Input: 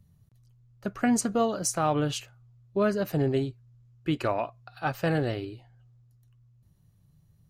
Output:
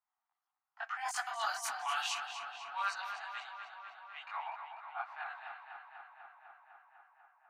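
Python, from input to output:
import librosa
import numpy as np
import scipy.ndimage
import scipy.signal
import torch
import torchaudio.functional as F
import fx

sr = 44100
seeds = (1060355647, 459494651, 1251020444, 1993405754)

p1 = fx.doppler_pass(x, sr, speed_mps=25, closest_m=12.0, pass_at_s=1.55)
p2 = fx.env_lowpass(p1, sr, base_hz=1200.0, full_db=-27.0)
p3 = scipy.signal.sosfilt(scipy.signal.butter(16, 740.0, 'highpass', fs=sr, output='sos'), p2)
p4 = fx.over_compress(p3, sr, threshold_db=-42.0, ratio=-1.0)
p5 = fx.chorus_voices(p4, sr, voices=2, hz=0.86, base_ms=21, depth_ms=5.0, mix_pct=55)
p6 = p5 + fx.echo_tape(p5, sr, ms=249, feedback_pct=81, wet_db=-6.5, lp_hz=4300.0, drive_db=32.0, wow_cents=25, dry=0)
y = p6 * librosa.db_to_amplitude(6.5)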